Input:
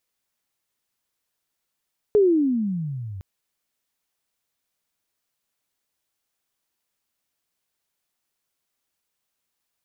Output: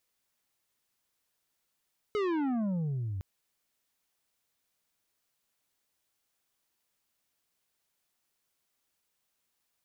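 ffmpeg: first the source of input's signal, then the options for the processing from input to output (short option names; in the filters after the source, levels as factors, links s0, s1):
-f lavfi -i "aevalsrc='pow(10,(-12-20*t/1.06)/20)*sin(2*PI*431*1.06/(-27*log(2)/12)*(exp(-27*log(2)/12*t/1.06)-1))':d=1.06:s=44100"
-af "asoftclip=type=tanh:threshold=0.0355"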